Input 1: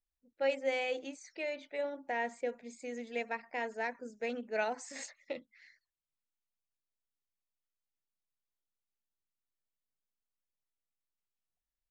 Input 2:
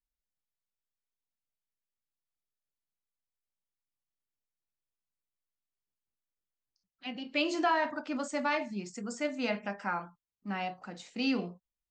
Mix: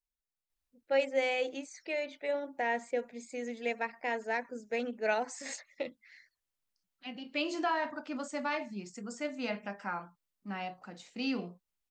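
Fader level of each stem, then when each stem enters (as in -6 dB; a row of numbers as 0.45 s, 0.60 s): +3.0 dB, -3.5 dB; 0.50 s, 0.00 s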